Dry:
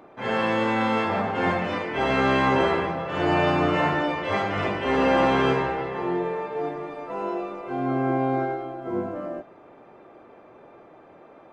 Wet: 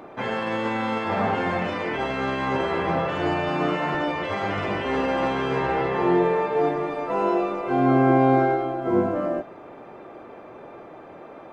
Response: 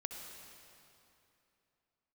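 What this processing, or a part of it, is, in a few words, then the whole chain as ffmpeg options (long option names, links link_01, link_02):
de-esser from a sidechain: -filter_complex "[0:a]asplit=2[link_01][link_02];[link_02]highpass=6000,apad=whole_len=508213[link_03];[link_01][link_03]sidechaincompress=threshold=-55dB:ratio=8:attack=2.6:release=56,asettb=1/sr,asplit=3[link_04][link_05][link_06];[link_04]atrim=end=3.494[link_07];[link_05]atrim=start=3.49:end=3.95,asetpts=PTS-STARTPTS,afade=type=in:duration=0.004:curve=qsin,afade=type=out:start_time=0.456:duration=0.004:curve=qsin,highpass=frequency=130:width=0.5412,highpass=frequency=130:width=1.3066[link_08];[link_06]atrim=start=3.946[link_09];[link_07][link_08]acrossfade=duration=0.004:curve1=hsin:curve2=qsin[link_10];[link_10][link_09]acrossfade=duration=0.004:curve1=qsin:curve2=hsin,volume=7dB"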